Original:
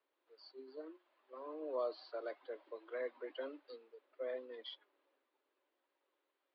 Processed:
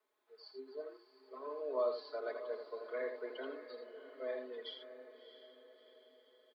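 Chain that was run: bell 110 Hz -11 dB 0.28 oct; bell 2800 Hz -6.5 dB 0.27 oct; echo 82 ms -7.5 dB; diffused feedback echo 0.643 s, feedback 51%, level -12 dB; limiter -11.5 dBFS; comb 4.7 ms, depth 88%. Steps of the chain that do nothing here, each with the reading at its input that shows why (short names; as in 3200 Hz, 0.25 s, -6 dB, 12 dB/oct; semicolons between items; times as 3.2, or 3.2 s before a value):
bell 110 Hz: input band starts at 230 Hz; limiter -11.5 dBFS: input peak -27.0 dBFS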